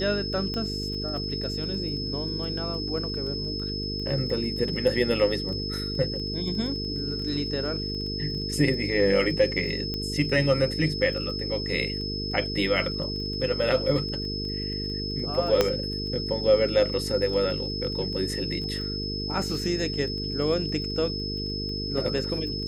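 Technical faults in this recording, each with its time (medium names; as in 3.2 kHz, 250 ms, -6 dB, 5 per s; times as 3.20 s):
buzz 50 Hz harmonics 9 -33 dBFS
crackle 13 per s -34 dBFS
whine 5.2 kHz -32 dBFS
0.54 s: pop -19 dBFS
9.94 s: pop -17 dBFS
15.61 s: pop -6 dBFS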